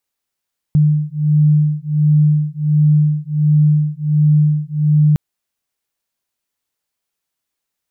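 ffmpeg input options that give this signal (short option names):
-f lavfi -i "aevalsrc='0.211*(sin(2*PI*150*t)+sin(2*PI*151.4*t))':d=4.41:s=44100"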